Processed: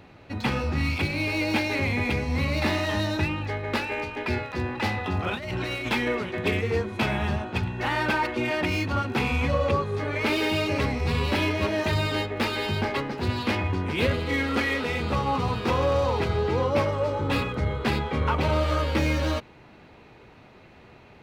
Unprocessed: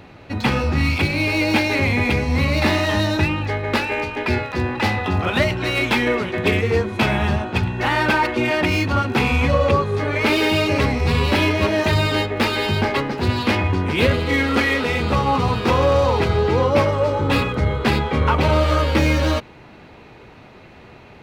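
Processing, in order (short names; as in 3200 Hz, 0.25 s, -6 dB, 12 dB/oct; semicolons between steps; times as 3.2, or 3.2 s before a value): 5.31–5.89 negative-ratio compressor -24 dBFS, ratio -1; gain -7 dB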